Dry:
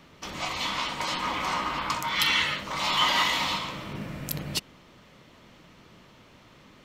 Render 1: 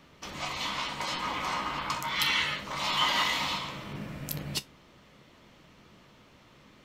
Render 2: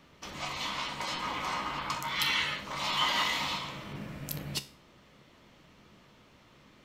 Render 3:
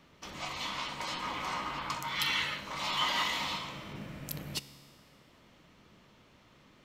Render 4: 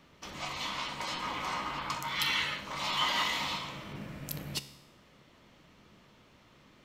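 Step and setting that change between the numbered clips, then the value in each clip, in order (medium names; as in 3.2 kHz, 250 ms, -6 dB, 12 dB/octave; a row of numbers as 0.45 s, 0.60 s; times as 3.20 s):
feedback comb, decay: 0.16 s, 0.38 s, 1.9 s, 0.87 s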